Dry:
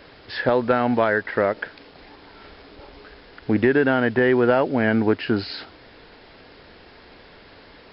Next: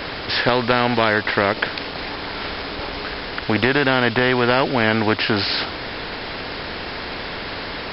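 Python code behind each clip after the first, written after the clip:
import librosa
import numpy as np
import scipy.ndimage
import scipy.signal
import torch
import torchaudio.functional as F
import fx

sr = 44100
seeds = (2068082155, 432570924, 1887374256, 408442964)

y = fx.spectral_comp(x, sr, ratio=2.0)
y = y * librosa.db_to_amplitude(5.0)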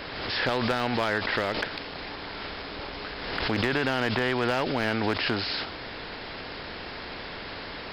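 y = np.clip(x, -10.0 ** (-8.5 / 20.0), 10.0 ** (-8.5 / 20.0))
y = fx.pre_swell(y, sr, db_per_s=34.0)
y = y * librosa.db_to_amplitude(-9.0)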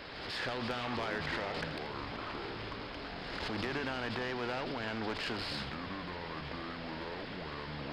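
y = fx.diode_clip(x, sr, knee_db=-23.5)
y = fx.echo_pitch(y, sr, ms=281, semitones=-7, count=3, db_per_echo=-6.0)
y = y + 10.0 ** (-14.0 / 20.0) * np.pad(y, (int(81 * sr / 1000.0), 0))[:len(y)]
y = y * librosa.db_to_amplitude(-8.5)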